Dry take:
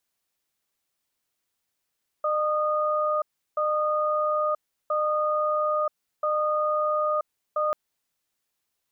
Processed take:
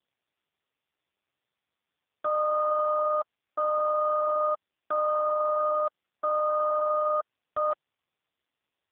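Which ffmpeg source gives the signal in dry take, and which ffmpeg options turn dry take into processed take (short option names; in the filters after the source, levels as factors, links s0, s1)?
-f lavfi -i "aevalsrc='0.0596*(sin(2*PI*606*t)+sin(2*PI*1230*t))*clip(min(mod(t,1.33),0.98-mod(t,1.33))/0.005,0,1)':d=5.49:s=44100"
-ar 8000 -c:a libopencore_amrnb -b:a 5150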